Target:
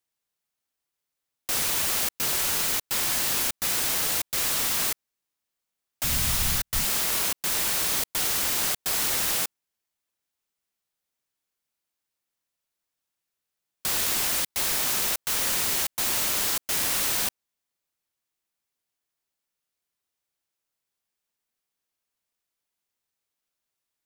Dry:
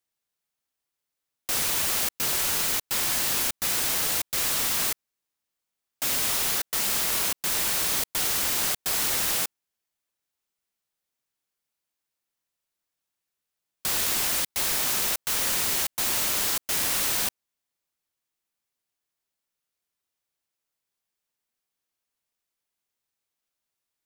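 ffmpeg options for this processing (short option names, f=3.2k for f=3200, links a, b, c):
-filter_complex "[0:a]asplit=3[a][b][c];[a]afade=t=out:st=6.03:d=0.02[d];[b]asubboost=boost=11:cutoff=120,afade=t=in:st=6.03:d=0.02,afade=t=out:st=6.84:d=0.02[e];[c]afade=t=in:st=6.84:d=0.02[f];[d][e][f]amix=inputs=3:normalize=0"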